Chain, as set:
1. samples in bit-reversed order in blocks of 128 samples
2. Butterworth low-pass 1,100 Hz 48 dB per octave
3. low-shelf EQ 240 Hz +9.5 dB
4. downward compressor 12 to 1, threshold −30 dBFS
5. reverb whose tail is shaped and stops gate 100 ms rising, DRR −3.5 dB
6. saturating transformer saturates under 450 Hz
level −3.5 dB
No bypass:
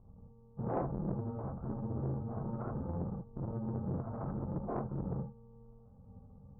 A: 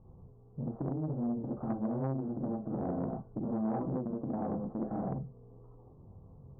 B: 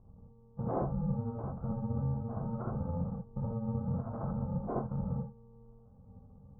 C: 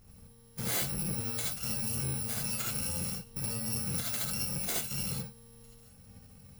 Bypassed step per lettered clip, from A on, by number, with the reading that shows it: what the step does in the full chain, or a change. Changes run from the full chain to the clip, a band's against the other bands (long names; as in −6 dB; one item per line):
1, 125 Hz band −4.0 dB
6, 125 Hz band +1.5 dB
2, 500 Hz band −2.5 dB